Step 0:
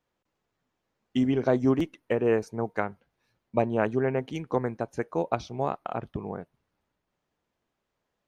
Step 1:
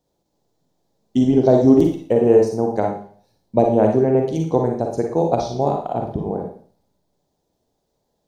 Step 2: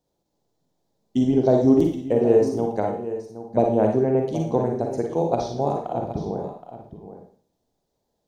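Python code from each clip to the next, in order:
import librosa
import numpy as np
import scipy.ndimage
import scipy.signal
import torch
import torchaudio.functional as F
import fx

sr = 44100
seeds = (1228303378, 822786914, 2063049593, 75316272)

y1 = fx.band_shelf(x, sr, hz=1800.0, db=-14.5, octaves=1.7)
y1 = fx.rev_schroeder(y1, sr, rt60_s=0.49, comb_ms=38, drr_db=1.5)
y1 = y1 * 10.0 ** (8.5 / 20.0)
y2 = y1 + 10.0 ** (-12.5 / 20.0) * np.pad(y1, (int(771 * sr / 1000.0), 0))[:len(y1)]
y2 = y2 * 10.0 ** (-4.0 / 20.0)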